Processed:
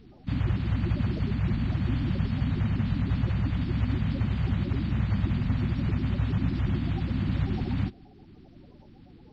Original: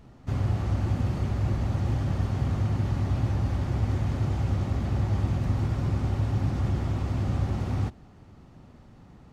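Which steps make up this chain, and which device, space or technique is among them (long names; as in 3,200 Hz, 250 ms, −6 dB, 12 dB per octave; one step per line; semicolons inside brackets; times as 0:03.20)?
clip after many re-uploads (low-pass filter 5,000 Hz 24 dB per octave; spectral magnitudes quantised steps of 30 dB)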